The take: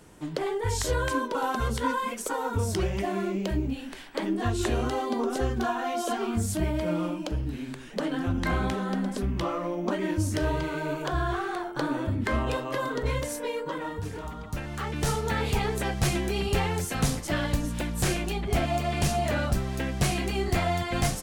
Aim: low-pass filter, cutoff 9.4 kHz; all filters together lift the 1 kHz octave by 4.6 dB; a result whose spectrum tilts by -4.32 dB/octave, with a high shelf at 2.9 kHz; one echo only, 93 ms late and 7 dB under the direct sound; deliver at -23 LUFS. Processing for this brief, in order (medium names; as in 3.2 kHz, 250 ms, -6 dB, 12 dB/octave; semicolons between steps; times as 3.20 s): low-pass 9.4 kHz; peaking EQ 1 kHz +5 dB; treble shelf 2.9 kHz +7 dB; delay 93 ms -7 dB; trim +3 dB